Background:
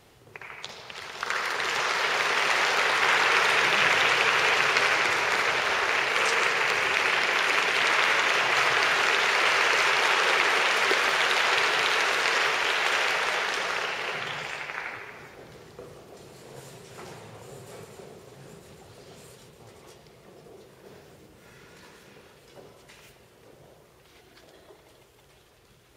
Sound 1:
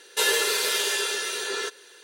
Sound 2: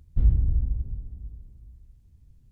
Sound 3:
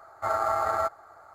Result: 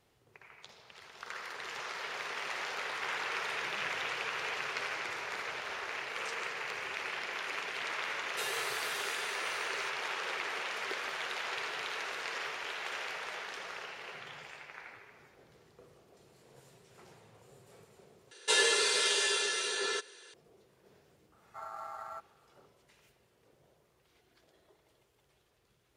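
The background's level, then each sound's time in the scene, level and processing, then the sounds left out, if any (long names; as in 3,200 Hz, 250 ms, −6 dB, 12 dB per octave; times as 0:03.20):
background −14.5 dB
0:08.20: mix in 1 −16.5 dB
0:18.31: overwrite with 1 −3.5 dB + elliptic low-pass filter 9,200 Hz, stop band 70 dB
0:21.32: mix in 3 −18 dB + low shelf with overshoot 640 Hz −8.5 dB, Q 1.5
not used: 2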